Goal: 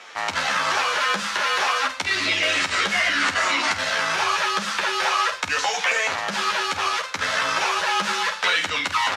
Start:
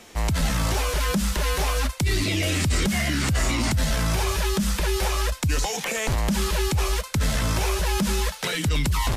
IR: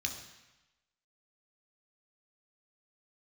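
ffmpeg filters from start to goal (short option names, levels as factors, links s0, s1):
-filter_complex "[0:a]equalizer=f=1400:w=1:g=11,asettb=1/sr,asplit=3[s0][s1][s2];[s0]atrim=end=5.954[s3];[s1]atrim=start=5.95:end=7.2,asetpts=PTS-STARTPTS,afade=t=in:d=0.004:c=qsin,afade=t=out:st=1.246:d=0.004:c=qsin,volume=7.08,asoftclip=hard,volume=0.141[s4];[s2]atrim=start=7.196[s5];[s3][s4]acrossfade=d=0.004:c1=hsin:c2=qsin[s6];[s6][s5]acrossfade=d=0.004:c1=qsin:c2=hsin,highpass=540,lowpass=5600,aecho=1:1:11|49:0.596|0.335,asplit=2[s7][s8];[1:a]atrim=start_sample=2205,lowshelf=f=170:g=11.5[s9];[s8][s9]afir=irnorm=-1:irlink=0,volume=0.224[s10];[s7][s10]amix=inputs=2:normalize=0"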